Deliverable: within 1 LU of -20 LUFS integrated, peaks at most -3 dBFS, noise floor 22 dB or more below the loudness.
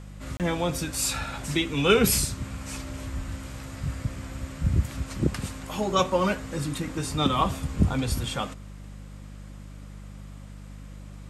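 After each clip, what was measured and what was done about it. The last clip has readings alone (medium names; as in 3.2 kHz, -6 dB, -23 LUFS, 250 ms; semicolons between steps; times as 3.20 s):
dropouts 1; longest dropout 28 ms; hum 50 Hz; highest harmonic 200 Hz; hum level -39 dBFS; loudness -27.5 LUFS; peak level -7.0 dBFS; loudness target -20.0 LUFS
-> interpolate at 0.37 s, 28 ms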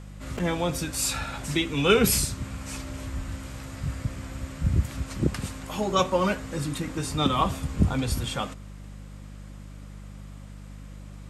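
dropouts 0; hum 50 Hz; highest harmonic 200 Hz; hum level -39 dBFS
-> de-hum 50 Hz, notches 4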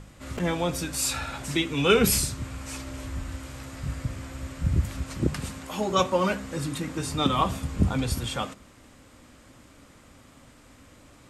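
hum not found; loudness -27.5 LUFS; peak level -7.0 dBFS; loudness target -20.0 LUFS
-> trim +7.5 dB; peak limiter -3 dBFS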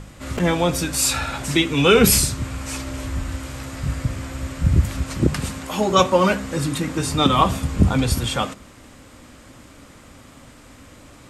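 loudness -20.5 LUFS; peak level -3.0 dBFS; noise floor -46 dBFS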